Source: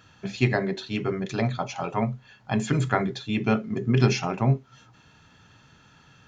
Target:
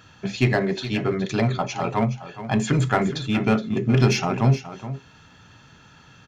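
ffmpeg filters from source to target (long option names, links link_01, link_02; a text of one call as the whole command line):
ffmpeg -i in.wav -filter_complex "[0:a]asplit=2[link_01][link_02];[link_02]asoftclip=type=hard:threshold=-23dB,volume=-3dB[link_03];[link_01][link_03]amix=inputs=2:normalize=0,aecho=1:1:420:0.224" out.wav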